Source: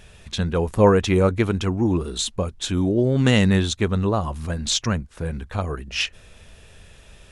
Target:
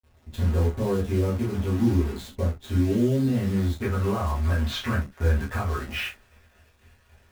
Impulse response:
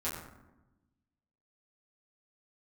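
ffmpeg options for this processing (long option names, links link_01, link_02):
-filter_complex "[0:a]lowpass=2500,agate=range=-33dB:threshold=-38dB:ratio=3:detection=peak,asetnsamples=nb_out_samples=441:pad=0,asendcmd='3.82 equalizer g 7.5',equalizer=frequency=1800:width=0.6:gain=-10,alimiter=limit=-18dB:level=0:latency=1:release=362,acrusher=bits=7:dc=4:mix=0:aa=0.000001[link_01];[1:a]atrim=start_sample=2205,atrim=end_sample=3969[link_02];[link_01][link_02]afir=irnorm=-1:irlink=0,volume=-2.5dB"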